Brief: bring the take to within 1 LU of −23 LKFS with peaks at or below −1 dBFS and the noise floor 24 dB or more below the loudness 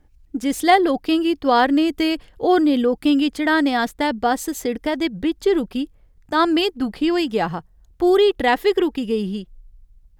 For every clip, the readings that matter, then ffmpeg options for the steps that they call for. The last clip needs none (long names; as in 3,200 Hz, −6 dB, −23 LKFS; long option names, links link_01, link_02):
integrated loudness −19.5 LKFS; sample peak −3.5 dBFS; target loudness −23.0 LKFS
→ -af "volume=-3.5dB"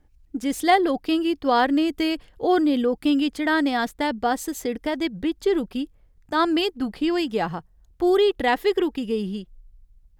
integrated loudness −23.0 LKFS; sample peak −7.0 dBFS; background noise floor −58 dBFS